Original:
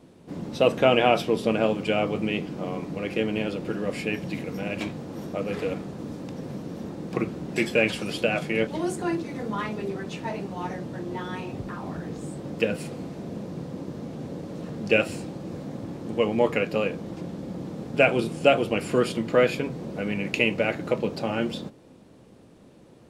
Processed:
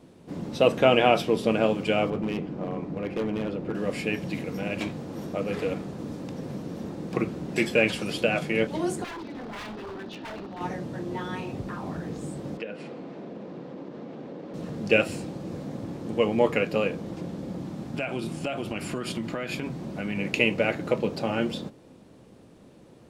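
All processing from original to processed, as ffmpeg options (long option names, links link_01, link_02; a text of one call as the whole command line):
ffmpeg -i in.wav -filter_complex "[0:a]asettb=1/sr,asplit=3[link_01][link_02][link_03];[link_01]atrim=end=2.104[link_04];[link_02]atrim=start=2.1:end=3.75,asetpts=PTS-STARTPTS,afade=type=in:duration=0.004:curve=qsin,afade=type=out:start_time=1.646:duration=0.004:curve=qsin,lowpass=frequency=1300:poles=1,volume=23.5dB,asoftclip=hard,volume=-23.5dB[link_05];[link_03]atrim=start=3.746[link_06];[link_04][link_05]acrossfade=duration=0.004:curve1=hsin:curve2=qsin[link_07];[link_07][link_06]acrossfade=duration=0.004:curve1=qsin:curve2=hsin,asettb=1/sr,asplit=3[link_08][link_09][link_10];[link_08]atrim=end=9.044[link_11];[link_09]atrim=start=9.04:end=10.61,asetpts=PTS-STARTPTS,afade=type=in:duration=0.004:curve=qsin,afade=type=out:start_time=1.566:duration=0.004:curve=qsin,highpass=160,equalizer=frequency=160:width_type=q:width=4:gain=-9,equalizer=frequency=480:width_type=q:width=4:gain=-7,equalizer=frequency=1100:width_type=q:width=4:gain=-5,equalizer=frequency=2200:width_type=q:width=4:gain=-9,lowpass=frequency=4500:width=0.5412,lowpass=frequency=4500:width=1.3066,aeval=exprs='0.0237*(abs(mod(val(0)/0.0237+3,4)-2)-1)':channel_layout=same[link_12];[link_10]atrim=start=10.606[link_13];[link_11][link_12]acrossfade=duration=0.004:curve1=hsin:curve2=qsin[link_14];[link_14][link_13]acrossfade=duration=0.004:curve1=qsin:curve2=hsin,asettb=1/sr,asplit=3[link_15][link_16][link_17];[link_15]atrim=end=12.574[link_18];[link_16]atrim=start=12.57:end=14.54,asetpts=PTS-STARTPTS,afade=type=in:duration=0.004:curve=qsin,afade=type=out:start_time=1.966:duration=0.004:curve=qsin,highpass=240,lowpass=3200,acompressor=threshold=-35dB:ratio=2.5:attack=3.2:release=140:knee=1:detection=peak[link_19];[link_17]atrim=start=14.536[link_20];[link_18][link_19]acrossfade=duration=0.004:curve1=hsin:curve2=qsin[link_21];[link_21][link_20]acrossfade=duration=0.004:curve1=qsin:curve2=hsin,asettb=1/sr,asplit=3[link_22][link_23][link_24];[link_22]atrim=end=17.594[link_25];[link_23]atrim=start=17.59:end=20.18,asetpts=PTS-STARTPTS,afade=type=in:duration=0.004:curve=qsin,afade=type=out:start_time=2.586:duration=0.004:curve=qsin,acompressor=threshold=-24dB:ratio=8:attack=3.2:release=140:knee=1:detection=peak,equalizer=frequency=470:width=4.8:gain=-10[link_26];[link_24]atrim=start=20.176[link_27];[link_25][link_26]acrossfade=duration=0.004:curve1=hsin:curve2=qsin[link_28];[link_28][link_27]acrossfade=duration=0.004:curve1=qsin:curve2=hsin" out.wav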